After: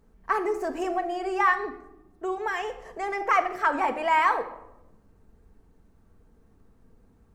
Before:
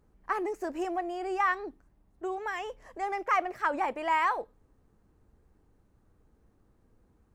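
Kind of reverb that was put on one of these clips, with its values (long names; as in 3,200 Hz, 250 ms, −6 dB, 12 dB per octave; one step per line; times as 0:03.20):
rectangular room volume 2,900 cubic metres, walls furnished, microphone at 1.6 metres
level +4 dB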